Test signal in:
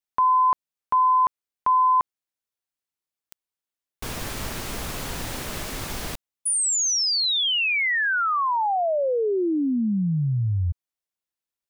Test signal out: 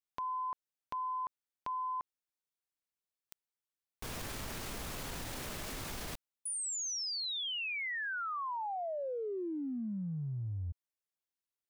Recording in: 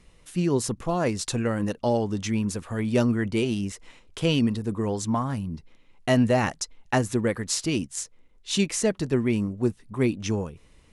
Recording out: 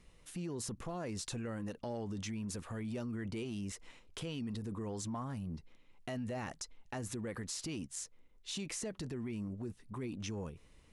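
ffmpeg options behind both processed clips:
-af "acompressor=threshold=0.0316:ratio=6:attack=0.95:release=59:knee=1:detection=peak,volume=0.473"

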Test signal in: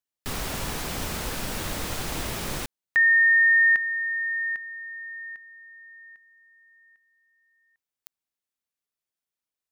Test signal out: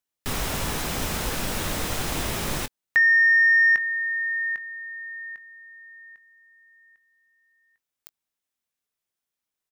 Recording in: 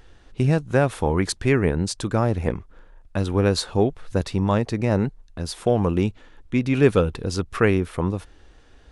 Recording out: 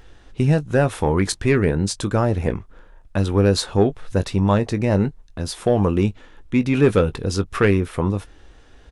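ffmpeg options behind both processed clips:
-filter_complex "[0:a]bandreject=f=4500:w=27,asoftclip=type=tanh:threshold=0.376,asplit=2[s0][s1];[s1]adelay=20,volume=0.237[s2];[s0][s2]amix=inputs=2:normalize=0,volume=1.41"

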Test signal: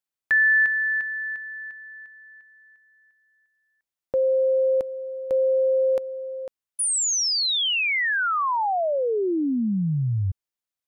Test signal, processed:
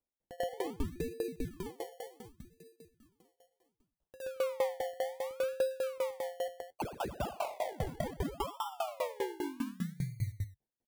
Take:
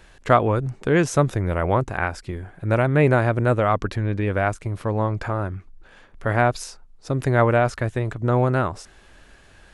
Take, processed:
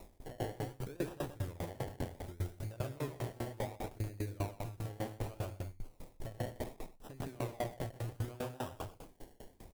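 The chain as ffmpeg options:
-filter_complex "[0:a]equalizer=f=200:t=o:w=0.28:g=-15,acompressor=threshold=0.0316:ratio=10:attack=1.1:release=61:knee=6:detection=rms,flanger=delay=9.6:depth=2.1:regen=-51:speed=1:shape=triangular,acrusher=samples=28:mix=1:aa=0.000001:lfo=1:lforange=16.8:lforate=0.67,acrossover=split=3400[s0][s1];[s1]acompressor=threshold=0.00251:ratio=4:attack=1:release=60[s2];[s0][s2]amix=inputs=2:normalize=0,firequalizer=gain_entry='entry(750,0);entry(1200,-5);entry(10000,6)':delay=0.05:min_phase=1,aecho=1:1:125.4|224.5:0.708|0.355,aeval=exprs='val(0)*pow(10,-25*if(lt(mod(5*n/s,1),2*abs(5)/1000),1-mod(5*n/s,1)/(2*abs(5)/1000),(mod(5*n/s,1)-2*abs(5)/1000)/(1-2*abs(5)/1000))/20)':c=same,volume=1.68"

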